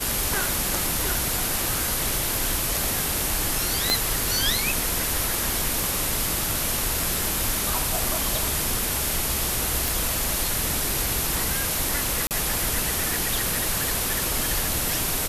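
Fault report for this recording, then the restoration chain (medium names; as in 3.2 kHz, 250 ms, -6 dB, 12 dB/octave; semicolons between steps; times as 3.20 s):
tick 33 1/3 rpm
3.90 s: pop -5 dBFS
5.84 s: pop
9.88 s: pop
12.27–12.31 s: dropout 38 ms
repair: de-click; interpolate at 12.27 s, 38 ms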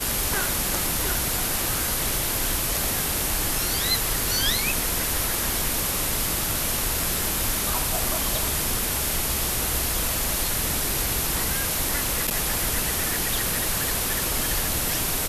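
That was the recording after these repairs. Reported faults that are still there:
3.90 s: pop
5.84 s: pop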